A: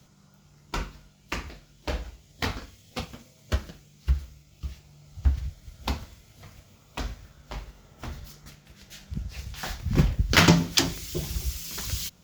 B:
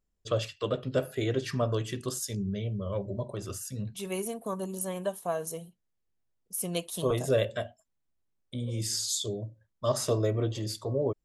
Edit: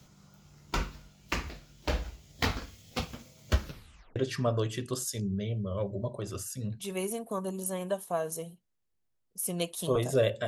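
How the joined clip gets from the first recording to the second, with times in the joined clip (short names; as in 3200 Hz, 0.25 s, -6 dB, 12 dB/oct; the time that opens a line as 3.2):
A
3.64 tape stop 0.52 s
4.16 switch to B from 1.31 s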